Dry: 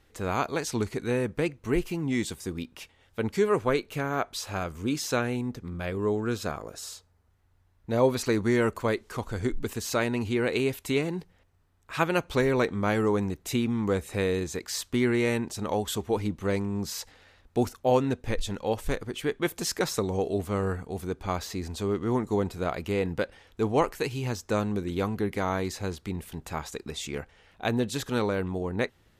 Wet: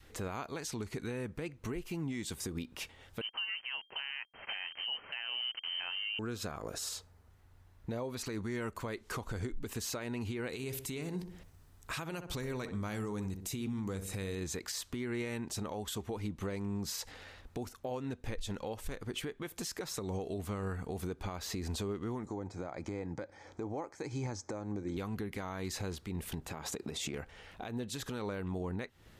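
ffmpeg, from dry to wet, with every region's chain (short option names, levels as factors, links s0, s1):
-filter_complex "[0:a]asettb=1/sr,asplit=3[s0][s1][s2];[s0]atrim=end=3.214[s3];[s1]atrim=start=3.21:end=6.19,asetpts=PTS-STARTPTS,afade=t=in:d=0.004:c=qsin,afade=t=out:st=2.976:d=0.004:c=qsin,aeval=exprs='val(0)*gte(abs(val(0)),0.0119)':c=same,lowpass=f=2700:t=q:w=0.5098,lowpass=f=2700:t=q:w=0.6013,lowpass=f=2700:t=q:w=0.9,lowpass=f=2700:t=q:w=2.563,afreqshift=-3200[s4];[s2]atrim=start=6.186[s5];[s3][s4]acrossfade=d=0.004:c1=hsin:c2=qsin[s6];[s6][s5]acrossfade=d=0.004:c1=qsin:c2=hsin,asettb=1/sr,asplit=3[s7][s8][s9];[s7]atrim=end=10.494[s10];[s8]atrim=start=10.49:end=14.35,asetpts=PTS-STARTPTS,afade=t=in:d=0.004:c=qsin,afade=t=out:st=3.856:d=0.004:c=qsin,bass=f=250:g=4,treble=f=4000:g=8,asplit=2[s11][s12];[s12]adelay=62,lowpass=f=1200:p=1,volume=0.299,asplit=2[s13][s14];[s14]adelay=62,lowpass=f=1200:p=1,volume=0.38,asplit=2[s15][s16];[s16]adelay=62,lowpass=f=1200:p=1,volume=0.38,asplit=2[s17][s18];[s18]adelay=62,lowpass=f=1200:p=1,volume=0.38[s19];[s11][s13][s15][s17][s19]amix=inputs=5:normalize=0,atrim=end_sample=170226[s20];[s9]atrim=start=14.346[s21];[s10][s20]acrossfade=d=0.004:c1=hsin:c2=qsin[s22];[s22][s21]acrossfade=d=0.004:c1=qsin:c2=hsin,asettb=1/sr,asplit=3[s23][s24][s25];[s23]atrim=end=22.264[s26];[s24]atrim=start=22.26:end=24.97,asetpts=PTS-STARTPTS,afade=t=in:d=0.004:c=qsin,afade=t=out:st=2.706:d=0.004:c=qsin,asuperstop=centerf=2800:order=4:qfactor=4.7,highpass=100,equalizer=f=100:t=q:w=4:g=7,equalizer=f=310:t=q:w=4:g=9,equalizer=f=560:t=q:w=4:g=8,equalizer=f=830:t=q:w=4:g=8,equalizer=f=3600:t=q:w=4:g=-9,equalizer=f=6300:t=q:w=4:g=5,lowpass=f=7800:w=0.5412,lowpass=f=7800:w=1.3066[s27];[s25]atrim=start=24.966[s28];[s26][s27]acrossfade=d=0.004:c1=hsin:c2=qsin[s29];[s29][s28]acrossfade=d=0.004:c1=qsin:c2=hsin,asettb=1/sr,asplit=3[s30][s31][s32];[s30]atrim=end=26.484[s33];[s31]atrim=start=26.48:end=27.14,asetpts=PTS-STARTPTS,afade=t=in:d=0.004:c=qsin,afade=t=out:st=0.656:d=0.004:c=qsin,highpass=88,equalizer=f=270:w=0.31:g=5,acompressor=threshold=0.0141:ratio=2.5:attack=3.2:release=140:knee=1:detection=peak[s34];[s32]atrim=start=27.136[s35];[s33][s34]acrossfade=d=0.004:c1=hsin:c2=qsin[s36];[s36][s35]acrossfade=d=0.004:c1=qsin:c2=hsin,adynamicequalizer=threshold=0.0158:dfrequency=480:dqfactor=0.97:tfrequency=480:tqfactor=0.97:attack=5:release=100:ratio=0.375:range=2.5:mode=cutabove:tftype=bell,acompressor=threshold=0.0141:ratio=12,alimiter=level_in=3.16:limit=0.0631:level=0:latency=1:release=103,volume=0.316,volume=1.78"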